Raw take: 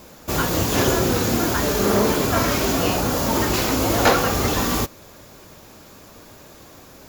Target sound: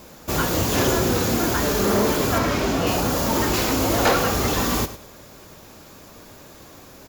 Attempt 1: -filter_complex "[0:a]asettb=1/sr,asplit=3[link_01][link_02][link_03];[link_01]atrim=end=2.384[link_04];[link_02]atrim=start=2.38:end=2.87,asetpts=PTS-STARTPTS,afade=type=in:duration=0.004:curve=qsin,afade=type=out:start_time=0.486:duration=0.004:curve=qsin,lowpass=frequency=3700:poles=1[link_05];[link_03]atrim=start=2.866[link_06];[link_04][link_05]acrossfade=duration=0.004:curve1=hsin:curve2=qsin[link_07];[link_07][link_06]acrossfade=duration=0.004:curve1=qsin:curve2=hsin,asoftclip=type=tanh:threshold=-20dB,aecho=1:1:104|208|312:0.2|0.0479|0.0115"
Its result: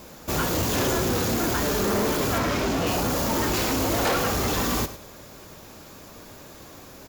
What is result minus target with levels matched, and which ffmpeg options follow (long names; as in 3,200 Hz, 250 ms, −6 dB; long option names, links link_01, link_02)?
soft clipping: distortion +10 dB
-filter_complex "[0:a]asettb=1/sr,asplit=3[link_01][link_02][link_03];[link_01]atrim=end=2.384[link_04];[link_02]atrim=start=2.38:end=2.87,asetpts=PTS-STARTPTS,afade=type=in:duration=0.004:curve=qsin,afade=type=out:start_time=0.486:duration=0.004:curve=qsin,lowpass=frequency=3700:poles=1[link_05];[link_03]atrim=start=2.866[link_06];[link_04][link_05]acrossfade=duration=0.004:curve1=hsin:curve2=qsin[link_07];[link_07][link_06]acrossfade=duration=0.004:curve1=qsin:curve2=hsin,asoftclip=type=tanh:threshold=-10.5dB,aecho=1:1:104|208|312:0.2|0.0479|0.0115"